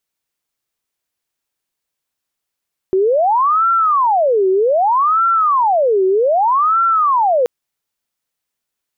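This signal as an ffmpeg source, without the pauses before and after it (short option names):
-f lavfi -i "aevalsrc='0.299*sin(2*PI*(867.5*t-492.5/(2*PI*0.64)*sin(2*PI*0.64*t)))':d=4.53:s=44100"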